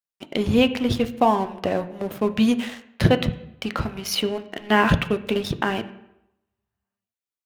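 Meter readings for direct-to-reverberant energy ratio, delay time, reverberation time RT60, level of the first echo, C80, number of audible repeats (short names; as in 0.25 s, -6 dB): 9.0 dB, none, 0.85 s, none, 17.0 dB, none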